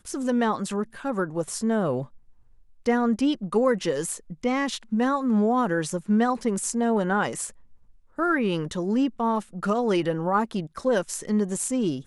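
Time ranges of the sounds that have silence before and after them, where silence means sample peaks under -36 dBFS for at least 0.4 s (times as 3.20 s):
2.86–7.50 s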